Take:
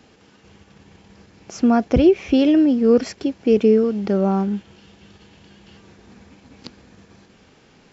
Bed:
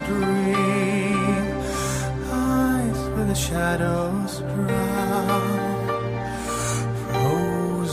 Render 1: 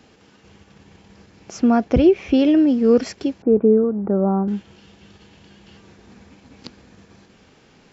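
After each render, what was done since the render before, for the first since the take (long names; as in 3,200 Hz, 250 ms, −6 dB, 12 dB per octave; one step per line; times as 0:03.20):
0:01.58–0:02.67: high-shelf EQ 6,300 Hz −8 dB
0:03.42–0:04.48: inverse Chebyshev low-pass filter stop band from 5,400 Hz, stop band 70 dB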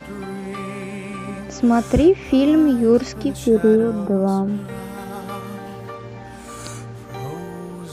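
mix in bed −9 dB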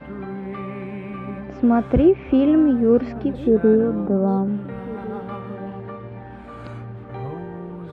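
high-frequency loss of the air 490 metres
slap from a distant wall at 240 metres, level −17 dB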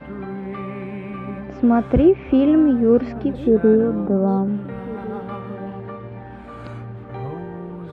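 level +1 dB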